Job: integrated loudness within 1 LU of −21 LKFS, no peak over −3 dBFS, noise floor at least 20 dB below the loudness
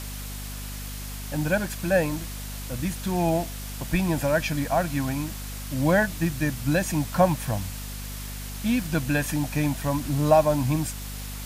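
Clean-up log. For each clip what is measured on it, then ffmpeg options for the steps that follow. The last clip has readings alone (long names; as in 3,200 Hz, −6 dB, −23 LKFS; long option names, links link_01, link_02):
mains hum 50 Hz; hum harmonics up to 250 Hz; level of the hum −34 dBFS; background noise floor −35 dBFS; target noise floor −46 dBFS; integrated loudness −26.0 LKFS; sample peak −6.5 dBFS; target loudness −21.0 LKFS
→ -af "bandreject=frequency=50:width_type=h:width=6,bandreject=frequency=100:width_type=h:width=6,bandreject=frequency=150:width_type=h:width=6,bandreject=frequency=200:width_type=h:width=6,bandreject=frequency=250:width_type=h:width=6"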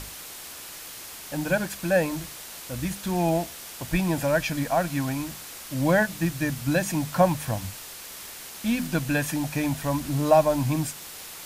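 mains hum none found; background noise floor −41 dBFS; target noise floor −46 dBFS
→ -af "afftdn=noise_reduction=6:noise_floor=-41"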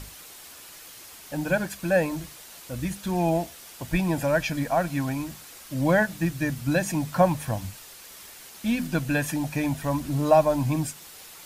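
background noise floor −46 dBFS; integrated loudness −26.0 LKFS; sample peak −7.0 dBFS; target loudness −21.0 LKFS
→ -af "volume=5dB,alimiter=limit=-3dB:level=0:latency=1"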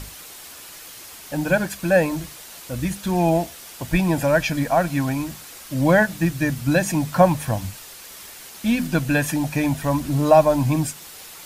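integrated loudness −21.0 LKFS; sample peak −3.0 dBFS; background noise floor −41 dBFS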